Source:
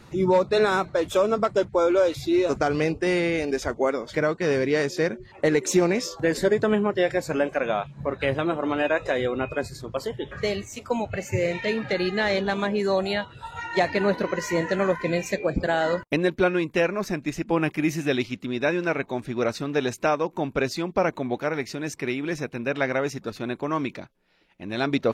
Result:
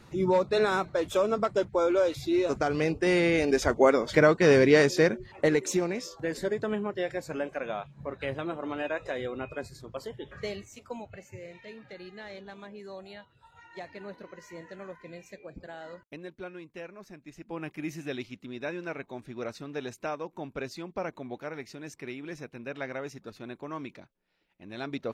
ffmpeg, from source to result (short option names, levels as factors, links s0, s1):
-af "volume=3.98,afade=t=in:st=2.74:d=1.24:silence=0.398107,afade=t=out:st=4.73:d=1.12:silence=0.237137,afade=t=out:st=10.44:d=0.95:silence=0.281838,afade=t=in:st=17.24:d=0.62:silence=0.375837"